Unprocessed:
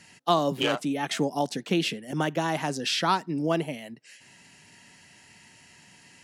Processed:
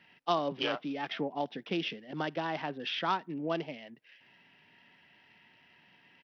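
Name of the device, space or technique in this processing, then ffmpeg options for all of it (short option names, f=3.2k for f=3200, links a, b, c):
Bluetooth headset: -af "highpass=f=240:p=1,aresample=8000,aresample=44100,volume=-6dB" -ar 44100 -c:a sbc -b:a 64k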